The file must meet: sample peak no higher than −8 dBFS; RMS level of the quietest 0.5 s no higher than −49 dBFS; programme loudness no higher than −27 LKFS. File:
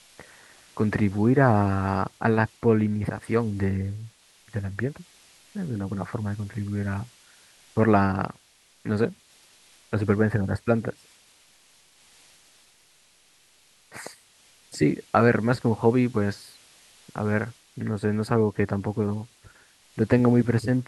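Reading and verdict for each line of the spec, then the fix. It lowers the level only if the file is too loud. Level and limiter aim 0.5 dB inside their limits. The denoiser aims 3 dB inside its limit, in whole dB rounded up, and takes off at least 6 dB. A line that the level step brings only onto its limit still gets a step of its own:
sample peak −4.0 dBFS: out of spec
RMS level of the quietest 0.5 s −60 dBFS: in spec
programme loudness −25.0 LKFS: out of spec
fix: level −2.5 dB
brickwall limiter −8.5 dBFS

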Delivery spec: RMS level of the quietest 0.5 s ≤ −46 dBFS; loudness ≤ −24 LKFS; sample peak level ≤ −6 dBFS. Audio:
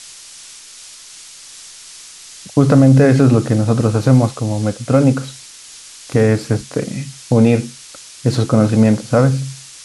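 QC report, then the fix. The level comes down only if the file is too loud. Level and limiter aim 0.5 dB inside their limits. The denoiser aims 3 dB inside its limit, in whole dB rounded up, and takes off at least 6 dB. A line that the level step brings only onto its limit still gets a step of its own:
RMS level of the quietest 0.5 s −38 dBFS: out of spec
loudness −14.5 LKFS: out of spec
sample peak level −1.5 dBFS: out of spec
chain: level −10 dB

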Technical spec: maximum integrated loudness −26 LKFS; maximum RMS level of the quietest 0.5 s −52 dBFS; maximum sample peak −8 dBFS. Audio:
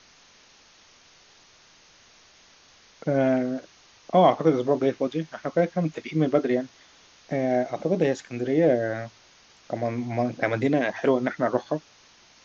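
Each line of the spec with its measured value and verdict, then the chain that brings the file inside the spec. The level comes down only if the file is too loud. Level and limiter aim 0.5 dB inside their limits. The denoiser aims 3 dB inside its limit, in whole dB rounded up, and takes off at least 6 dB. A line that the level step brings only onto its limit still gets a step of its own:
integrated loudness −25.0 LKFS: out of spec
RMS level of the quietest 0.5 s −56 dBFS: in spec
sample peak −6.5 dBFS: out of spec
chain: level −1.5 dB
brickwall limiter −8.5 dBFS

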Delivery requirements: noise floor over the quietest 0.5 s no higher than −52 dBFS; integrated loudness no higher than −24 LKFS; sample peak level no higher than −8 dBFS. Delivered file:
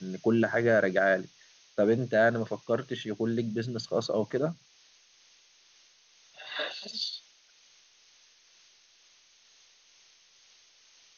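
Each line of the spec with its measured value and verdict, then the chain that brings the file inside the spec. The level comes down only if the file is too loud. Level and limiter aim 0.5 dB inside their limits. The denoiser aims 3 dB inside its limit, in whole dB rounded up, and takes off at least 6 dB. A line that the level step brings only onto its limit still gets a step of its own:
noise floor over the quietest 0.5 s −62 dBFS: in spec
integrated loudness −29.0 LKFS: in spec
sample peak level −11.5 dBFS: in spec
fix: no processing needed

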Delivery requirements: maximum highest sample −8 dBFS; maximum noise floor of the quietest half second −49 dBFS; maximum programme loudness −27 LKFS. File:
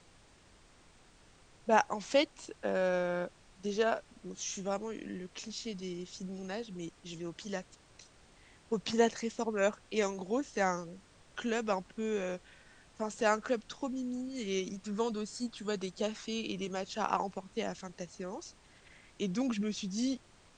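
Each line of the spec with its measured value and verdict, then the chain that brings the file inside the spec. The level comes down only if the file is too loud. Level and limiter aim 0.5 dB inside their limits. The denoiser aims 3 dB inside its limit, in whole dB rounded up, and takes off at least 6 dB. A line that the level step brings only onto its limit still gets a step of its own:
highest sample −11.5 dBFS: in spec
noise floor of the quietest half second −61 dBFS: in spec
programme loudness −35.5 LKFS: in spec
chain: no processing needed

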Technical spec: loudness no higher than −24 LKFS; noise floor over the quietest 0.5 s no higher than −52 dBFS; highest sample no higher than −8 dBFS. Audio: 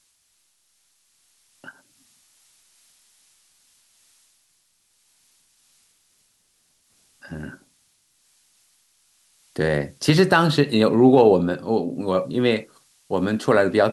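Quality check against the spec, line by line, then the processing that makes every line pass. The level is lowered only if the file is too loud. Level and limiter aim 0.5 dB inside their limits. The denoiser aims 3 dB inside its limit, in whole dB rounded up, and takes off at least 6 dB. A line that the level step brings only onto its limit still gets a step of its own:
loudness −19.5 LKFS: out of spec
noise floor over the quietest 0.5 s −66 dBFS: in spec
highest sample −3.5 dBFS: out of spec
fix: level −5 dB

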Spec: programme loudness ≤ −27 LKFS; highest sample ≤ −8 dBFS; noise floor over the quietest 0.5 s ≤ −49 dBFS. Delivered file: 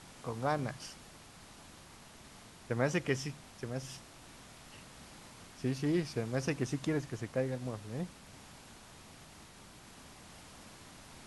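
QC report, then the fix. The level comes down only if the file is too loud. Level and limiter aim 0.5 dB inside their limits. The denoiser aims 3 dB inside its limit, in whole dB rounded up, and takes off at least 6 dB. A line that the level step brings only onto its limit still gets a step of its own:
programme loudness −36.5 LKFS: in spec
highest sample −18.0 dBFS: in spec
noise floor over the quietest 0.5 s −55 dBFS: in spec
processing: no processing needed

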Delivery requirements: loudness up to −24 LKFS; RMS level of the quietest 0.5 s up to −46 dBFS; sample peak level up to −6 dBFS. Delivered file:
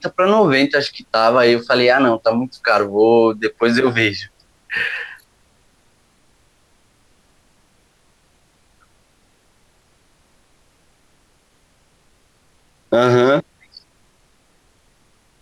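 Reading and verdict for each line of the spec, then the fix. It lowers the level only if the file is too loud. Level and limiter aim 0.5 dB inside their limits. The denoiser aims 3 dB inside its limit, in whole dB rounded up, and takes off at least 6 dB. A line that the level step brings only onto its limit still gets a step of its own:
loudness −15.5 LKFS: out of spec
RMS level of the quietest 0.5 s −58 dBFS: in spec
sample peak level −3.5 dBFS: out of spec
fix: level −9 dB

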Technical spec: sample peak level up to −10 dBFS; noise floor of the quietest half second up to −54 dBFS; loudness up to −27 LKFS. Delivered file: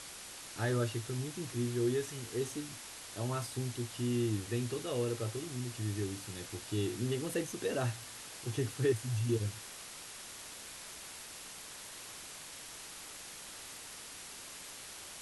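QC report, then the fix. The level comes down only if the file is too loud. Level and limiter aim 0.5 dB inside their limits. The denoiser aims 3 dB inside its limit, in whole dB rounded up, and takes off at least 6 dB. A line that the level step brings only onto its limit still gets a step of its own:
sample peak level −20.0 dBFS: in spec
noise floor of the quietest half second −48 dBFS: out of spec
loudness −38.0 LKFS: in spec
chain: broadband denoise 9 dB, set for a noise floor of −48 dBFS

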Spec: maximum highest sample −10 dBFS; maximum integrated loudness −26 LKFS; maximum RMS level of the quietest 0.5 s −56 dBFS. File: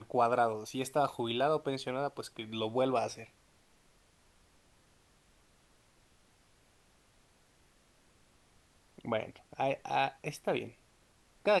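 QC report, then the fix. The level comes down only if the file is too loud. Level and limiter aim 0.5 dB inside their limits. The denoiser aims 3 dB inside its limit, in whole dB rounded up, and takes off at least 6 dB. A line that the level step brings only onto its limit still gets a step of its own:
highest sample −16.0 dBFS: in spec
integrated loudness −34.0 LKFS: in spec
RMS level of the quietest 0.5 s −67 dBFS: in spec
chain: no processing needed

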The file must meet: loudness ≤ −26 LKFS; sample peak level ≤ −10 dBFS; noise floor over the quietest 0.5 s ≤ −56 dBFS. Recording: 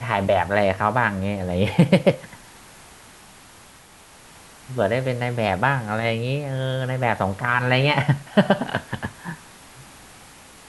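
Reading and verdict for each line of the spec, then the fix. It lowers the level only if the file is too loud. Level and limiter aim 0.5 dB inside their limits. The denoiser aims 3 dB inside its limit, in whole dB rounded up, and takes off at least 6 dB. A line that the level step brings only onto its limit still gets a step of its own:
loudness −21.5 LKFS: out of spec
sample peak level −3.5 dBFS: out of spec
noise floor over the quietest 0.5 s −48 dBFS: out of spec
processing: broadband denoise 6 dB, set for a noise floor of −48 dBFS
level −5 dB
brickwall limiter −10.5 dBFS

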